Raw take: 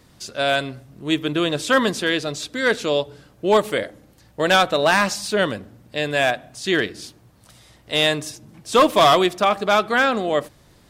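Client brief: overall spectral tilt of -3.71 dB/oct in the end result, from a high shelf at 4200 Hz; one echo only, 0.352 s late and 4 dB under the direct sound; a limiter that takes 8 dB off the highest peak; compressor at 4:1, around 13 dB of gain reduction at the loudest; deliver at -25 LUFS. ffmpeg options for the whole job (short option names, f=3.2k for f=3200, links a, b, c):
-af "highshelf=f=4.2k:g=-4,acompressor=threshold=-27dB:ratio=4,alimiter=limit=-21.5dB:level=0:latency=1,aecho=1:1:352:0.631,volume=6dB"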